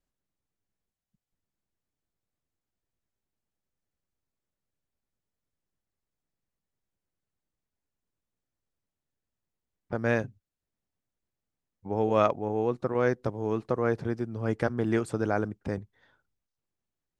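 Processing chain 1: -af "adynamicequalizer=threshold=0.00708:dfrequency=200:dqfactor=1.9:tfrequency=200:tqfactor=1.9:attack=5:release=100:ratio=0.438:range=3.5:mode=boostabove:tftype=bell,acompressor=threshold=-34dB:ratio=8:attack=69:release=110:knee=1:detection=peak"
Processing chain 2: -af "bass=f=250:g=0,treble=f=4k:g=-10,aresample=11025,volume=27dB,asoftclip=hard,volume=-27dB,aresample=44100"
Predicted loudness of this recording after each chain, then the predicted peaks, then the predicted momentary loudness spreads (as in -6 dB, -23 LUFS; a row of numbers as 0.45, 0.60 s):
-33.5, -33.5 LUFS; -12.5, -25.0 dBFS; 5, 7 LU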